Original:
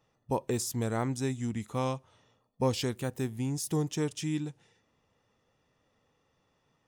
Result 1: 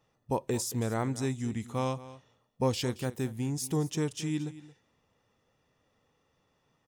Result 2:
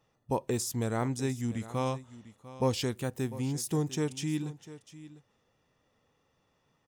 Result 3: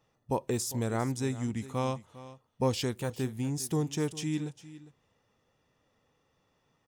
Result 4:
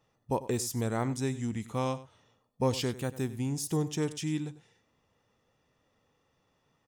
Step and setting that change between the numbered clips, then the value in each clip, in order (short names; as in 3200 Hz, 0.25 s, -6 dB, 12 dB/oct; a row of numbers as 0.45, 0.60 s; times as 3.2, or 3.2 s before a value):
echo, time: 224, 698, 402, 96 ms